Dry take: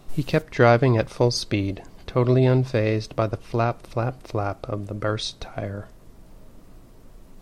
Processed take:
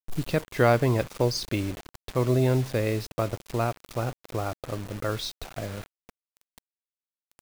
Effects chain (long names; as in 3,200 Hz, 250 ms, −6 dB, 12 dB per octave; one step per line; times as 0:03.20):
bit reduction 6 bits
level −4.5 dB